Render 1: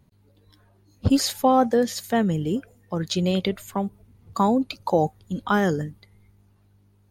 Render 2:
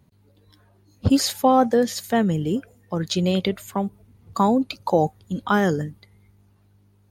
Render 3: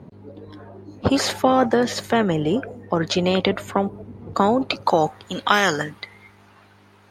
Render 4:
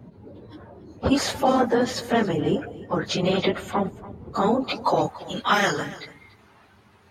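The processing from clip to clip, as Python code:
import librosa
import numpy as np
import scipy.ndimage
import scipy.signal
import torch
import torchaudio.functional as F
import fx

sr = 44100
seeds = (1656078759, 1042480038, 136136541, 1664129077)

y1 = scipy.signal.sosfilt(scipy.signal.butter(2, 52.0, 'highpass', fs=sr, output='sos'), x)
y1 = y1 * librosa.db_to_amplitude(1.5)
y2 = fx.filter_sweep_bandpass(y1, sr, from_hz=410.0, to_hz=1600.0, start_s=4.44, end_s=5.34, q=0.79)
y2 = fx.spectral_comp(y2, sr, ratio=2.0)
y2 = y2 * librosa.db_to_amplitude(5.0)
y3 = fx.phase_scramble(y2, sr, seeds[0], window_ms=50)
y3 = y3 + 10.0 ** (-18.0 / 20.0) * np.pad(y3, (int(285 * sr / 1000.0), 0))[:len(y3)]
y3 = y3 * librosa.db_to_amplitude(-3.0)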